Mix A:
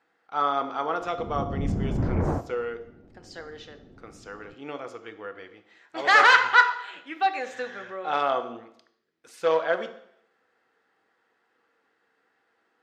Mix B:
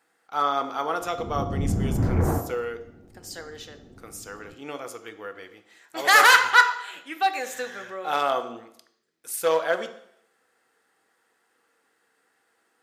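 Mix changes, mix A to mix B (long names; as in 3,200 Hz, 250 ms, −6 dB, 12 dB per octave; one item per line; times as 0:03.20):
background: send +8.5 dB
master: remove high-frequency loss of the air 160 metres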